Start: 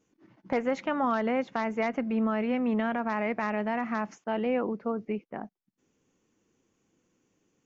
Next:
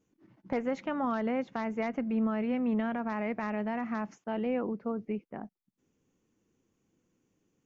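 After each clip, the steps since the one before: bass shelf 310 Hz +7 dB; trim -6 dB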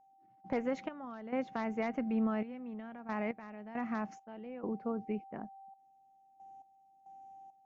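whistle 780 Hz -48 dBFS; trance gate "..xx..xxxxx...x" 68 bpm -12 dB; trim -2.5 dB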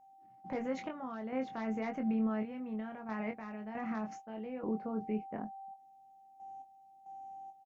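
peak limiter -31 dBFS, peak gain reduction 8.5 dB; doubling 23 ms -5.5 dB; trim +2 dB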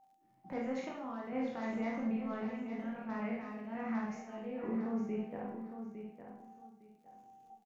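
on a send: feedback delay 858 ms, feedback 20%, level -9 dB; on the sum: Schroeder reverb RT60 0.53 s, combs from 31 ms, DRR -1 dB; crackle 59 per s -61 dBFS; trim -4 dB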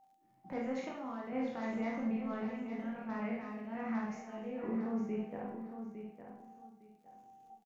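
delay 295 ms -22.5 dB

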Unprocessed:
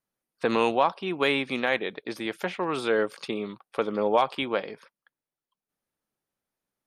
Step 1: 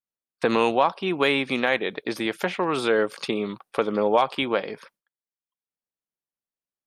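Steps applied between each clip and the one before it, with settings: gate with hold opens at -44 dBFS; in parallel at +2 dB: compression, threshold -31 dBFS, peak gain reduction 14 dB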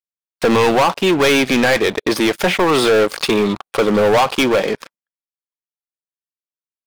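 waveshaping leveller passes 5; trim -3 dB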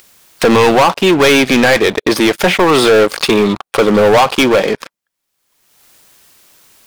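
upward compressor, threshold -18 dBFS; trim +4.5 dB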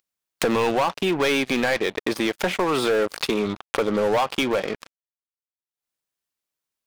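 compression 1.5:1, threshold -19 dBFS, peak gain reduction 4.5 dB; power-law waveshaper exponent 2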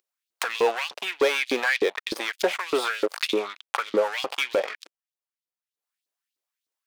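LFO high-pass saw up 3.3 Hz 310–4400 Hz; trim -3 dB

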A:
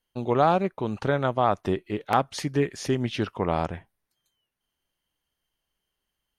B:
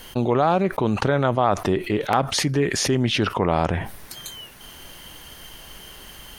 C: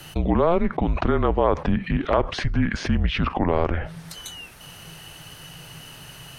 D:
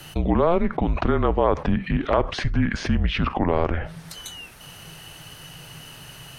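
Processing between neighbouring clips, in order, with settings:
level flattener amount 70%
low-pass that closes with the level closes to 2.7 kHz, closed at -20 dBFS; frequency shift -170 Hz
reverberation, pre-delay 5 ms, DRR 21.5 dB

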